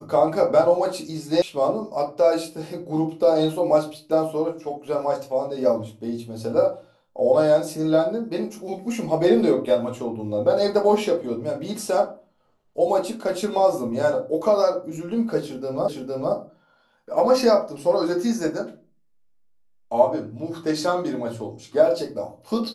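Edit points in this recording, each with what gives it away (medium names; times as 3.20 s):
1.42 s: sound stops dead
15.88 s: repeat of the last 0.46 s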